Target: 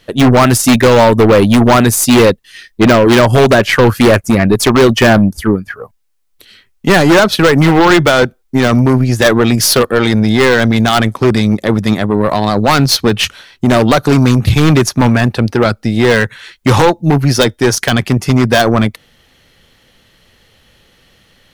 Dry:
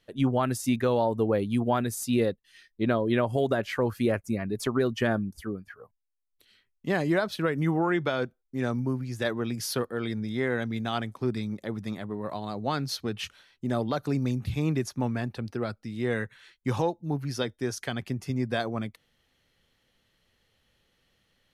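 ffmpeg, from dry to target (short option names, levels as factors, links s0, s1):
-af "aeval=exprs='0.178*(cos(1*acos(clip(val(0)/0.178,-1,1)))-cos(1*PI/2))+0.0158*(cos(4*acos(clip(val(0)/0.178,-1,1)))-cos(4*PI/2))+0.0251*(cos(6*acos(clip(val(0)/0.178,-1,1)))-cos(6*PI/2))+0.0126*(cos(7*acos(clip(val(0)/0.178,-1,1)))-cos(7*PI/2))+0.00794*(cos(8*acos(clip(val(0)/0.178,-1,1)))-cos(8*PI/2))':c=same,aeval=exprs='0.106*(abs(mod(val(0)/0.106+3,4)-2)-1)':c=same,apsyclip=26.6,volume=0.794"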